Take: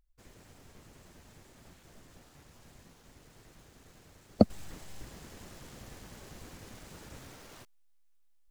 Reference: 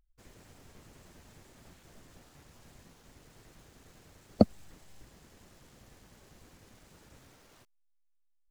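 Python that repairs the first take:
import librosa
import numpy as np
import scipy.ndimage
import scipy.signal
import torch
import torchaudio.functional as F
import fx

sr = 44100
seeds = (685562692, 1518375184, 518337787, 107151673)

y = fx.fix_level(x, sr, at_s=4.5, step_db=-8.5)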